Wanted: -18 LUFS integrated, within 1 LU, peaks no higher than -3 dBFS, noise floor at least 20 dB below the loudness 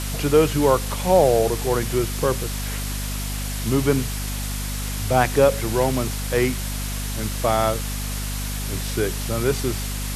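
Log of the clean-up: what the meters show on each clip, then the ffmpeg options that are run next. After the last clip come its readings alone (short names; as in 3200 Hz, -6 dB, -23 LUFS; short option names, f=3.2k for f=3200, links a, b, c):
hum 50 Hz; harmonics up to 250 Hz; hum level -26 dBFS; noise floor -27 dBFS; noise floor target -43 dBFS; loudness -22.5 LUFS; peak -3.5 dBFS; loudness target -18.0 LUFS
-> -af "bandreject=f=50:t=h:w=4,bandreject=f=100:t=h:w=4,bandreject=f=150:t=h:w=4,bandreject=f=200:t=h:w=4,bandreject=f=250:t=h:w=4"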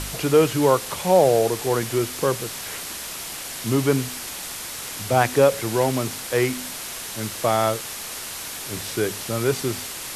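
hum none; noise floor -34 dBFS; noise floor target -43 dBFS
-> -af "afftdn=nr=9:nf=-34"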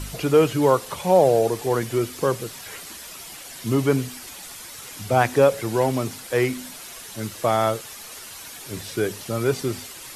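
noise floor -40 dBFS; noise floor target -42 dBFS
-> -af "afftdn=nr=6:nf=-40"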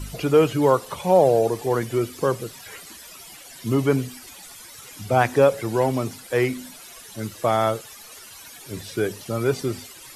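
noise floor -43 dBFS; loudness -22.0 LUFS; peak -4.0 dBFS; loudness target -18.0 LUFS
-> -af "volume=4dB,alimiter=limit=-3dB:level=0:latency=1"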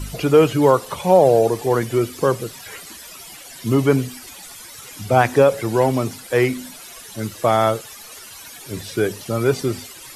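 loudness -18.5 LUFS; peak -3.0 dBFS; noise floor -39 dBFS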